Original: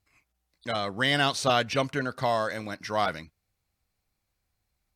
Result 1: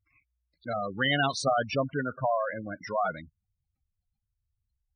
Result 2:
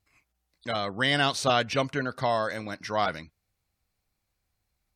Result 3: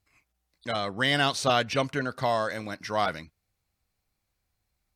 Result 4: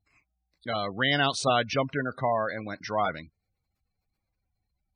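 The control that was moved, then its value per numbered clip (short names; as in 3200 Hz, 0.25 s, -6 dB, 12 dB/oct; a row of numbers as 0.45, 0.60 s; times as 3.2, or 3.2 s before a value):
spectral gate, under each frame's peak: -10, -40, -55, -20 dB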